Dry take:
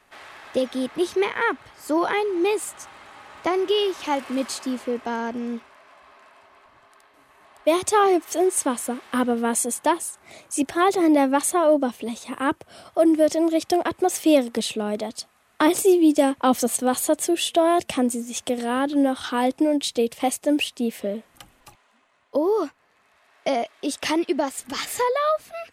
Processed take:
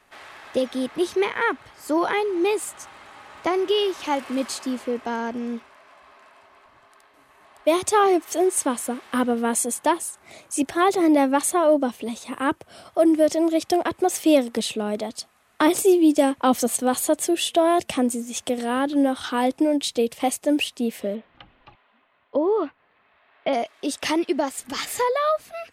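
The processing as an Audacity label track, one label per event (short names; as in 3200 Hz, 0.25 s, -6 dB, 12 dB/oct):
21.150000	23.530000	steep low-pass 3700 Hz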